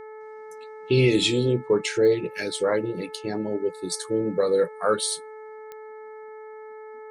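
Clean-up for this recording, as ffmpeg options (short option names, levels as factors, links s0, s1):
-af "adeclick=t=4,bandreject=f=433.7:t=h:w=4,bandreject=f=867.4:t=h:w=4,bandreject=f=1301.1:t=h:w=4,bandreject=f=1734.8:t=h:w=4,bandreject=f=2168.5:t=h:w=4"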